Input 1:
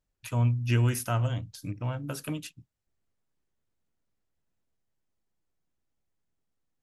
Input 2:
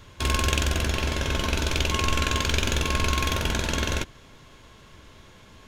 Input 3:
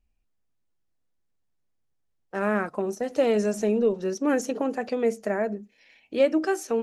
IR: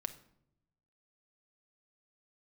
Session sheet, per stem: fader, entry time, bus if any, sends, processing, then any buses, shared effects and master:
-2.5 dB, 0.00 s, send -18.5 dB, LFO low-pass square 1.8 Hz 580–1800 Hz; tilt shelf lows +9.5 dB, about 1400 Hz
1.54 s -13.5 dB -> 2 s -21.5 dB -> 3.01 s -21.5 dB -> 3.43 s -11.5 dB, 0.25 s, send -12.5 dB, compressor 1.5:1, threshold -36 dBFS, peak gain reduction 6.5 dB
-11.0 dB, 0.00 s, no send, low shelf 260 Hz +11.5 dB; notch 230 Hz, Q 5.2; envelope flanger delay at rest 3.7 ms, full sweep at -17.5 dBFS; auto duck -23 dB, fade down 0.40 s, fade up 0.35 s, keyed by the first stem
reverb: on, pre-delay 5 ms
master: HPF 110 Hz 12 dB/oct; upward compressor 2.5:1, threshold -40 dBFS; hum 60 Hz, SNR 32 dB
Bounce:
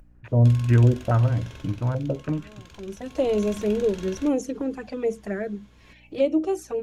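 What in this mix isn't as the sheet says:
stem 3 -11.0 dB -> -2.0 dB; master: missing HPF 110 Hz 12 dB/oct

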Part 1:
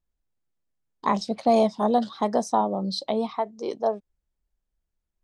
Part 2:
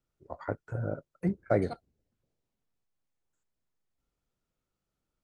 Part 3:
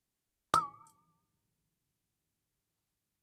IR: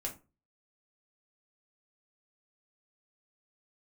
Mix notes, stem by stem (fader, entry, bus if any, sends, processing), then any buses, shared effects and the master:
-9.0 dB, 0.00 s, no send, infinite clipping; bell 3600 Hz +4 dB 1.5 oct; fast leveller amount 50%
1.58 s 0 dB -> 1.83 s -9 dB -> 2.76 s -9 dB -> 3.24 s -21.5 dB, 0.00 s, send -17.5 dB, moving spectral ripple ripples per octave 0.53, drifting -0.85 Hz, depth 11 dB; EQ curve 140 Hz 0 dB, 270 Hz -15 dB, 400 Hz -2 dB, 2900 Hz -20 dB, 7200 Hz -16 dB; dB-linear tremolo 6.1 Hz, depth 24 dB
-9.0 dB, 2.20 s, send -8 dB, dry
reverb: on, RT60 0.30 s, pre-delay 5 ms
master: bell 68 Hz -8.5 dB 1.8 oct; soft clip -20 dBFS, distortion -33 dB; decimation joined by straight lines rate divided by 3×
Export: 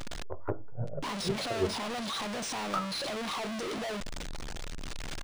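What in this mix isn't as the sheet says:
stem 2 0.0 dB -> +9.5 dB; reverb return +8.5 dB

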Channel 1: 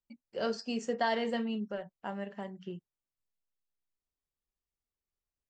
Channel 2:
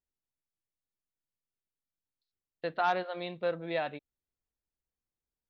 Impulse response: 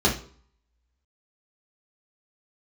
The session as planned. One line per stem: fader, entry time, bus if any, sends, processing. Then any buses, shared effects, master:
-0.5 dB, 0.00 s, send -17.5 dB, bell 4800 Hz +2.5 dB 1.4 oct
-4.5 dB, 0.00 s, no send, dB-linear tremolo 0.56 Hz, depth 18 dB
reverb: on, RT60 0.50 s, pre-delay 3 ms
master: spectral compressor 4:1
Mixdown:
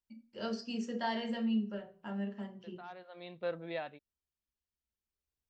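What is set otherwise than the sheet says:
stem 1 -0.5 dB -> -7.5 dB; master: missing spectral compressor 4:1

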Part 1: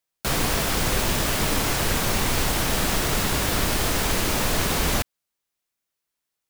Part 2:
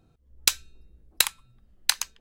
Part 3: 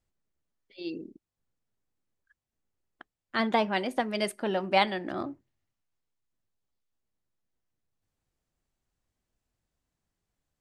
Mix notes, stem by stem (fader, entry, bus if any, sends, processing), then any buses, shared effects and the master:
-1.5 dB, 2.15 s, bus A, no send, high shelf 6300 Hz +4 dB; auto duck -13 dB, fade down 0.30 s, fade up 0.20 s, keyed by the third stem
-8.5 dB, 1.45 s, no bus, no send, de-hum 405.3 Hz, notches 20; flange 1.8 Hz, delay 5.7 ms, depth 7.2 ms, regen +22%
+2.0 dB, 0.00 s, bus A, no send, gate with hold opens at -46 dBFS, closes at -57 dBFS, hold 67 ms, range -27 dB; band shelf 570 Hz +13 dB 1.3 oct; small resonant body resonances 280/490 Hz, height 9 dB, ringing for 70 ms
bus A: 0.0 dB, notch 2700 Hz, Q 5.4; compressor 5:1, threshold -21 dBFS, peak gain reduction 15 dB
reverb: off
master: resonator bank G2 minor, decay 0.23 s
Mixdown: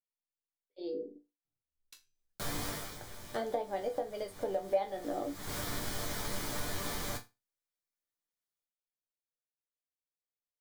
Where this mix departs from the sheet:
stem 1: missing high shelf 6300 Hz +4 dB; stem 2 -8.5 dB -> -20.0 dB

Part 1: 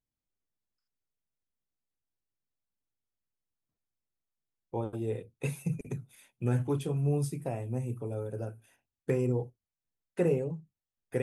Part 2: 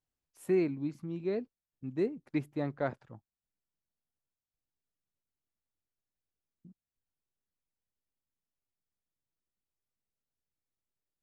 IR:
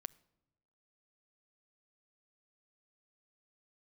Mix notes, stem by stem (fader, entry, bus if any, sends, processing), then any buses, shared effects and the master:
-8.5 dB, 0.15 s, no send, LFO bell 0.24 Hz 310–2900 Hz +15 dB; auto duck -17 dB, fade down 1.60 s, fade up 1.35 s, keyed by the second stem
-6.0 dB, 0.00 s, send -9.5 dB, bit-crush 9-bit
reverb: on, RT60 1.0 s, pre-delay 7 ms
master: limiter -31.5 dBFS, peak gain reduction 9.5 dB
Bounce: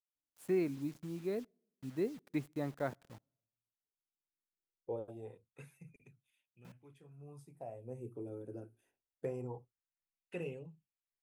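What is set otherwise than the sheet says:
stem 1 -8.5 dB -> -15.0 dB; master: missing limiter -31.5 dBFS, peak gain reduction 9.5 dB

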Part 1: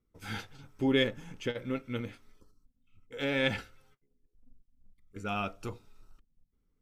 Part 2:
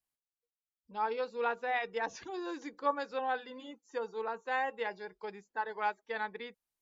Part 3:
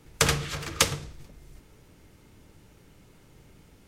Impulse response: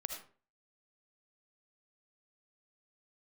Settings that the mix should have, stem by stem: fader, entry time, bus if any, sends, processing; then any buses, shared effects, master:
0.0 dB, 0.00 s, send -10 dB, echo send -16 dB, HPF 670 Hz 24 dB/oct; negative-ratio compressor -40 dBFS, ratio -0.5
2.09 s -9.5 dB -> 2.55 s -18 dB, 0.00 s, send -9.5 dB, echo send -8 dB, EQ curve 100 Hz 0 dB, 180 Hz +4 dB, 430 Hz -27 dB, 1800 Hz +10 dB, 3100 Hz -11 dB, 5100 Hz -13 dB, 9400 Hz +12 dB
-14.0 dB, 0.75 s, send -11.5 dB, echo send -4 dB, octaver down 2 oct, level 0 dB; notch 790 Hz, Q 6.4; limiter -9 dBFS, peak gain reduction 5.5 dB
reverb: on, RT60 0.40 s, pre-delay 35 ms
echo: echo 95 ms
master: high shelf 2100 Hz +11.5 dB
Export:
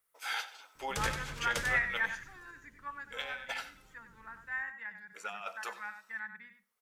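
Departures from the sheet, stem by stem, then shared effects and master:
stem 2 -9.5 dB -> -1.5 dB; master: missing high shelf 2100 Hz +11.5 dB

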